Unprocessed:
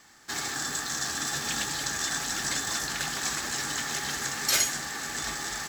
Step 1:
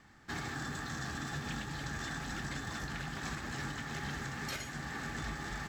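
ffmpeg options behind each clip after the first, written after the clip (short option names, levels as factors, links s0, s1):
-af "bass=f=250:g=12,treble=f=4000:g=-14,alimiter=level_in=1.12:limit=0.0631:level=0:latency=1:release=404,volume=0.891,volume=0.631"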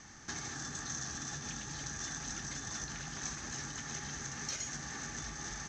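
-af "acompressor=threshold=0.00447:ratio=6,lowpass=f=6200:t=q:w=12,volume=1.68"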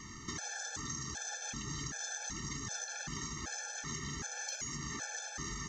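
-af "acompressor=threshold=0.00794:ratio=6,afftfilt=real='re*gt(sin(2*PI*1.3*pts/sr)*(1-2*mod(floor(b*sr/1024/450),2)),0)':imag='im*gt(sin(2*PI*1.3*pts/sr)*(1-2*mod(floor(b*sr/1024/450),2)),0)':win_size=1024:overlap=0.75,volume=2.37"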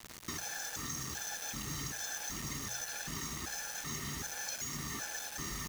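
-af "acrusher=bits=6:mix=0:aa=0.000001,bandreject=f=60.71:t=h:w=4,bandreject=f=121.42:t=h:w=4,bandreject=f=182.13:t=h:w=4"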